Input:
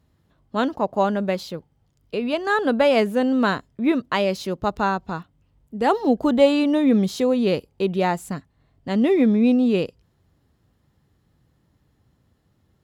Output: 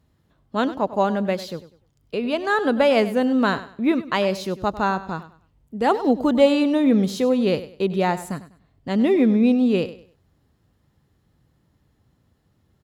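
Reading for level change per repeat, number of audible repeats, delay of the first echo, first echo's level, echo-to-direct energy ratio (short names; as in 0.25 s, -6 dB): -11.0 dB, 2, 99 ms, -15.0 dB, -14.5 dB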